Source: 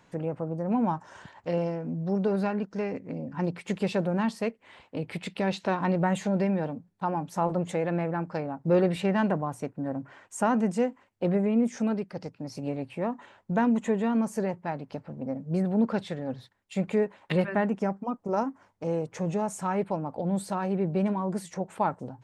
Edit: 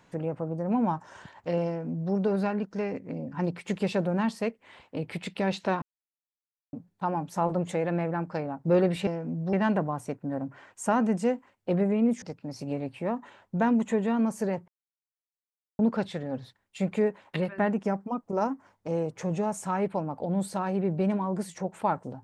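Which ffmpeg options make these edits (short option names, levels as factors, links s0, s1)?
-filter_complex "[0:a]asplit=9[s0][s1][s2][s3][s4][s5][s6][s7][s8];[s0]atrim=end=5.82,asetpts=PTS-STARTPTS,afade=t=out:st=5.816:d=0.004:c=hsin[s9];[s1]atrim=start=5.82:end=6.73,asetpts=PTS-STARTPTS,volume=0[s10];[s2]atrim=start=6.73:end=9.072,asetpts=PTS-STARTPTS,afade=t=in:d=0.004:c=hsin[s11];[s3]atrim=start=1.668:end=2.132[s12];[s4]atrim=start=9.068:end=11.762[s13];[s5]atrim=start=12.178:end=14.64,asetpts=PTS-STARTPTS,afade=t=out:st=2.458:d=0.004:c=hsin[s14];[s6]atrim=start=14.64:end=15.75,asetpts=PTS-STARTPTS,volume=0[s15];[s7]atrim=start=15.75:end=17.54,asetpts=PTS-STARTPTS,afade=t=in:d=0.004:c=hsin,afade=t=out:st=1.45:d=0.34:silence=0.298538[s16];[s8]atrim=start=17.54,asetpts=PTS-STARTPTS,afade=t=in:d=0.004:c=hsin:silence=0.298538[s17];[s9][s10][s11]concat=n=3:v=0:a=1[s18];[s18][s12]acrossfade=d=0.004:c1=hsin:c2=hsin[s19];[s19][s13]acrossfade=d=0.004:c1=hsin:c2=hsin[s20];[s14][s15][s16][s17]concat=n=4:v=0:a=1[s21];[s20][s21]acrossfade=d=0.004:c1=hsin:c2=hsin"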